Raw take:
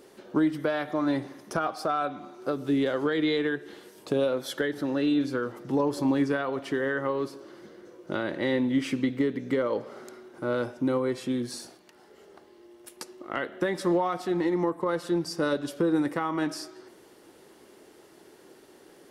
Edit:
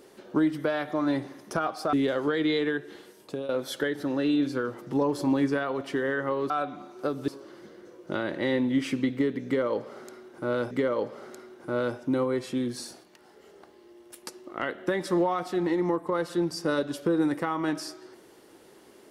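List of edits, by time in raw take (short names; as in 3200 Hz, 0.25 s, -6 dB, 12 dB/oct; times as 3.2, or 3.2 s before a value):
1.93–2.71 move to 7.28
3.56–4.27 fade out equal-power, to -13.5 dB
9.45–10.71 loop, 2 plays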